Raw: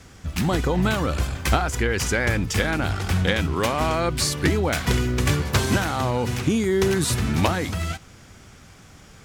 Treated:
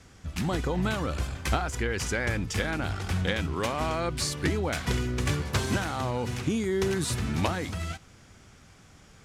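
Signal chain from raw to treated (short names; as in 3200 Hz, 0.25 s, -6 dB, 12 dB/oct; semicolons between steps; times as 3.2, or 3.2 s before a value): LPF 12000 Hz 12 dB/oct; gain -6.5 dB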